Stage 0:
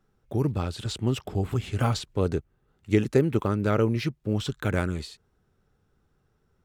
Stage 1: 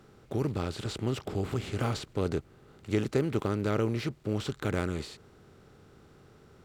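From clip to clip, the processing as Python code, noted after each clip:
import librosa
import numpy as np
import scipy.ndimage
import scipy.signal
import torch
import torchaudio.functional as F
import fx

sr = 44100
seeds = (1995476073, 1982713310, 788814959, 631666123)

y = fx.bin_compress(x, sr, power=0.6)
y = y * 10.0 ** (-8.0 / 20.0)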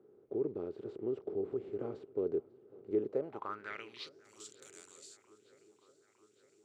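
y = fx.filter_sweep_bandpass(x, sr, from_hz=400.0, to_hz=7300.0, start_s=3.05, end_s=4.29, q=4.0)
y = fx.echo_swing(y, sr, ms=910, ratio=1.5, feedback_pct=62, wet_db=-24)
y = y * 10.0 ** (1.0 / 20.0)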